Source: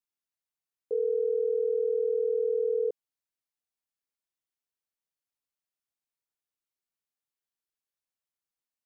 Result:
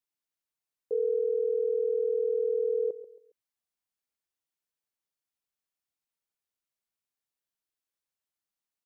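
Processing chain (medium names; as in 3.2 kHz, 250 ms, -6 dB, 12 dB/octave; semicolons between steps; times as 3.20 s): feedback delay 137 ms, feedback 33%, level -15 dB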